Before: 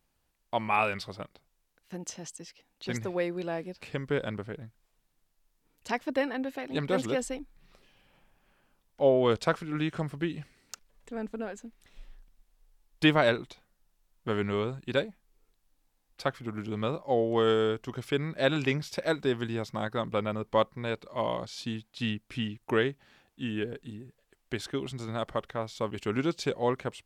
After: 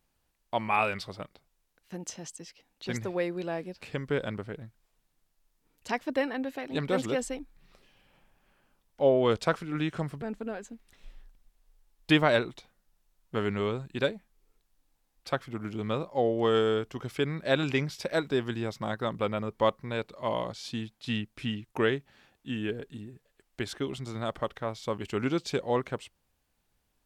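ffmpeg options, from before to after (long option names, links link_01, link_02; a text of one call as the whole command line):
ffmpeg -i in.wav -filter_complex "[0:a]asplit=2[link_01][link_02];[link_01]atrim=end=10.222[link_03];[link_02]atrim=start=11.148[link_04];[link_03][link_04]acrossfade=duration=0.004:curve1=hsin:curve2=hsin" out.wav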